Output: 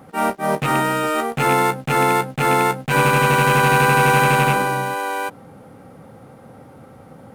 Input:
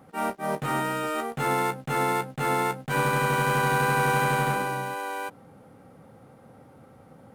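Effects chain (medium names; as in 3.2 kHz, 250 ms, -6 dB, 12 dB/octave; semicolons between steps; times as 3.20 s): rattle on loud lows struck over -29 dBFS, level -22 dBFS; trim +8.5 dB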